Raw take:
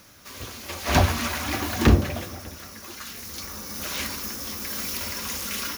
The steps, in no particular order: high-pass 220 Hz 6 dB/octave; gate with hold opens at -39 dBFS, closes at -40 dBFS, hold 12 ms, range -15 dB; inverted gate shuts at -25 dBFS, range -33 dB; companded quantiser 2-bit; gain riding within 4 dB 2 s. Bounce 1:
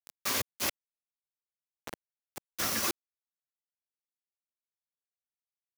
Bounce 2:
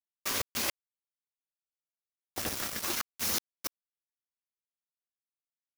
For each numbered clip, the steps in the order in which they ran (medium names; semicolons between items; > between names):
gain riding > gate with hold > inverted gate > companded quantiser > high-pass; high-pass > inverted gate > gate with hold > gain riding > companded quantiser